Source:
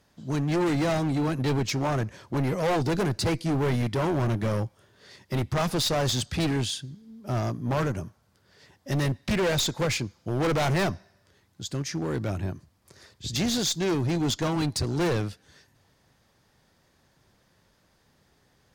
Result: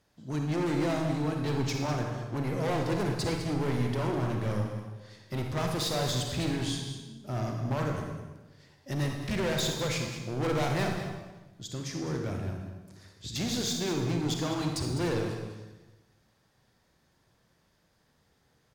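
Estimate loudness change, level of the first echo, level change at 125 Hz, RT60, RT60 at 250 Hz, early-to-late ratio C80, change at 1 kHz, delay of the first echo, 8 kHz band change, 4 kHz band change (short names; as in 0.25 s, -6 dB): -4.5 dB, -11.0 dB, -3.5 dB, 1.1 s, 1.4 s, 5.0 dB, -4.0 dB, 0.204 s, -4.5 dB, -4.5 dB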